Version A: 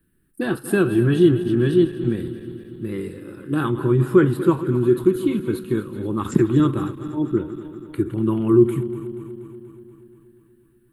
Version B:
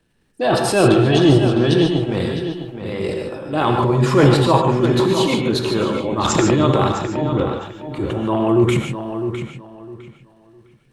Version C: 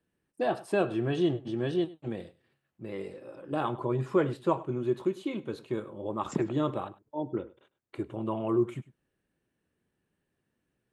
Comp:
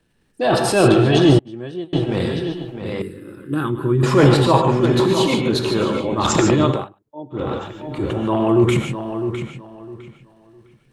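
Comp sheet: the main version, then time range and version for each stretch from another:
B
1.39–1.93 from C
3.02–4.03 from A
6.75–7.42 from C, crossfade 0.24 s

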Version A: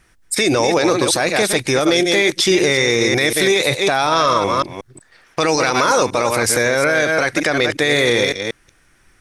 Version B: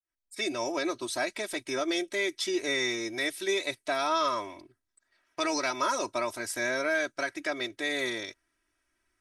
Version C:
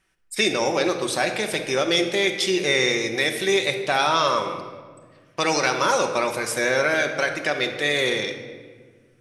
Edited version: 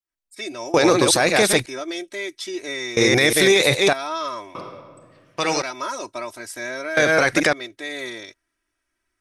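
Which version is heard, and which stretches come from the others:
B
0.74–1.66 from A
2.97–3.93 from A
4.55–5.62 from C
6.97–7.53 from A

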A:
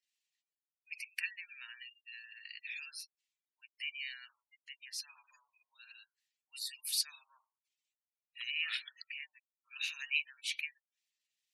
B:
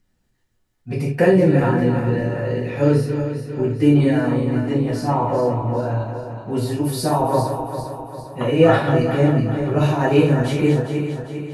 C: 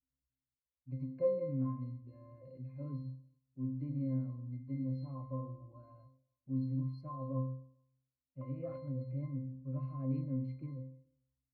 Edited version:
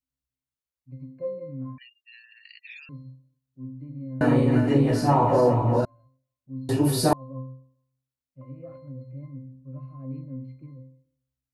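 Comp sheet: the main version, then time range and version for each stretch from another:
C
1.78–2.89 from A
4.21–5.85 from B
6.69–7.13 from B

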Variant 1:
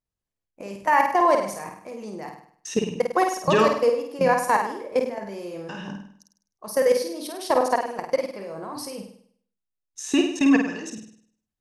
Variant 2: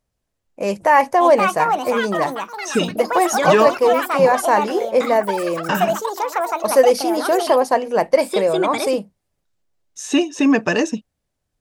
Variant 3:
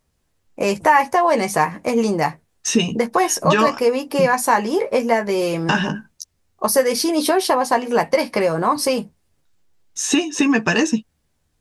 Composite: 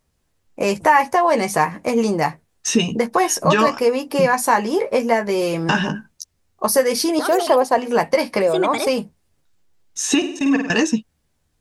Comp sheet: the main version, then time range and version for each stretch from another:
3
7.19–7.78 from 2
8.42–8.87 from 2
10.22–10.7 from 1

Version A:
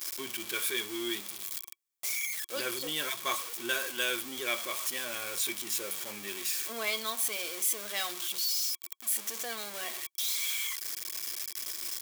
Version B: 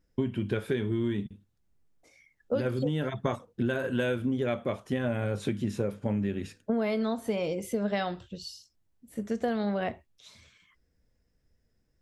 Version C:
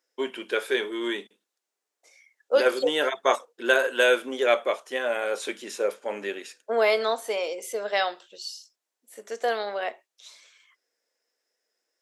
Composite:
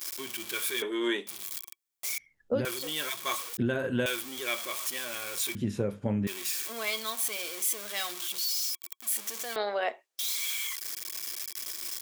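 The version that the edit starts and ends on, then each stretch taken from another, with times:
A
0.82–1.27 from C
2.18–2.65 from B
3.57–4.06 from B
5.55–6.27 from B
9.56–10.19 from C

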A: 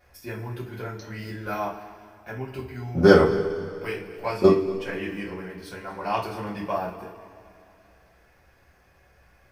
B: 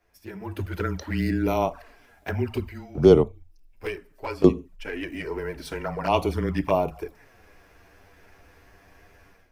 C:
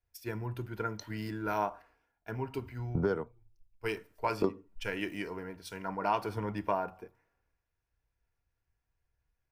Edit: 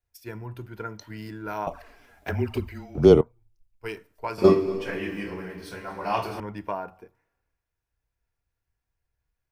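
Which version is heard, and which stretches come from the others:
C
1.67–3.21 from B
4.38–6.4 from A

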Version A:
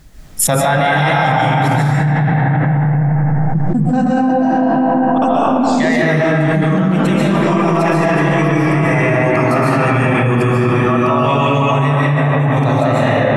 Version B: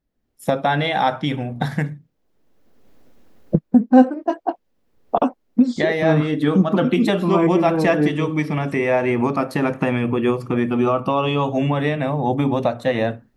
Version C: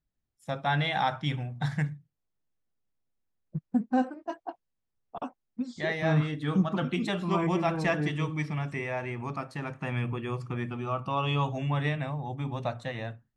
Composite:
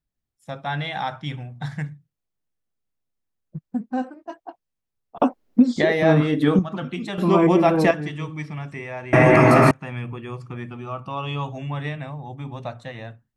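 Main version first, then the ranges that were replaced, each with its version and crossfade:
C
5.2–6.59 from B
7.18–7.91 from B
9.13–9.71 from A

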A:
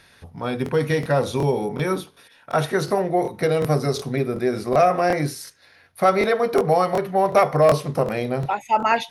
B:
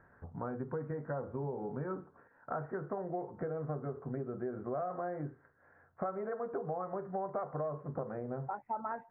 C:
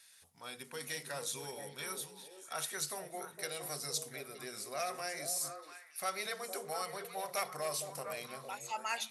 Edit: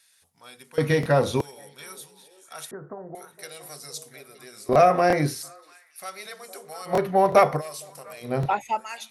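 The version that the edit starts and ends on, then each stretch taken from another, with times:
C
0.78–1.41 from A
2.71–3.15 from B
4.69–5.43 from A
6.9–7.57 from A, crossfade 0.10 s
8.29–8.73 from A, crossfade 0.16 s

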